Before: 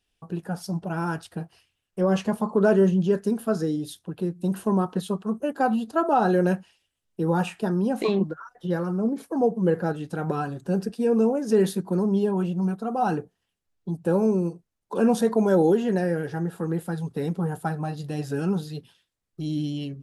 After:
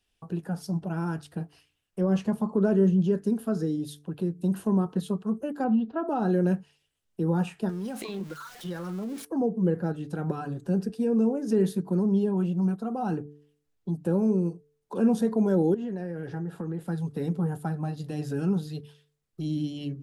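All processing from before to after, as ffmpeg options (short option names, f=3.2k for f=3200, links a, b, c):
-filter_complex "[0:a]asettb=1/sr,asplit=3[a][b][c];[a]atrim=end=5.644[d];[b]atrim=start=5.64:end=6.08,asetpts=PTS-STARTPTS,afade=t=in:d=0.004:c=qsin,afade=t=out:st=0.436:d=0.004:c=qsin,lowpass=f=3.1k:w=0.5412,lowpass=f=3.1k:w=1.3066,aecho=1:1:4.2:0.33,atrim=end_sample=19404[e];[c]atrim=start=6.076[f];[d][e]acrossfade=d=0.004:c1=hsin:c2=qsin[g];[g][f]acrossfade=d=0.004:c1=qsin:c2=hsin,asettb=1/sr,asplit=3[h][i][j];[h]atrim=end=7.694[k];[i]atrim=start=7.69:end=9.25,asetpts=PTS-STARTPTS,afade=t=in:d=0.004:c=qsin,afade=t=out:st=1.556:d=0.004:c=qsin,aeval=exprs='val(0)+0.5*0.00944*sgn(val(0))':c=same,tiltshelf=f=1.1k:g=-6.5,acompressor=threshold=-28dB:ratio=6:attack=3.2:release=140:knee=1:detection=peak[l];[j]atrim=start=9.246[m];[k][l]acrossfade=d=0.004:c1=hsin:c2=qsin[n];[n][m]acrossfade=d=0.004:c1=qsin:c2=hsin,asettb=1/sr,asplit=3[o][p][q];[o]atrim=end=15.744[r];[p]atrim=start=15.74:end=16.88,asetpts=PTS-STARTPTS,afade=t=in:d=0.004:c=qsin,afade=t=out:st=1.136:d=0.004:c=qsin,highshelf=f=6.6k:g=-10.5,acompressor=threshold=-27dB:ratio=10:attack=3.2:release=140:knee=1:detection=peak[s];[q]atrim=start=16.876[t];[r][s]acrossfade=d=0.004:c1=hsin:c2=qsin[u];[u][t]acrossfade=d=0.004:c1=qsin:c2=hsin,bandreject=f=147:t=h:w=4,bandreject=f=294:t=h:w=4,bandreject=f=441:t=h:w=4,acrossover=split=360[v][w];[w]acompressor=threshold=-48dB:ratio=1.5[x];[v][x]amix=inputs=2:normalize=0"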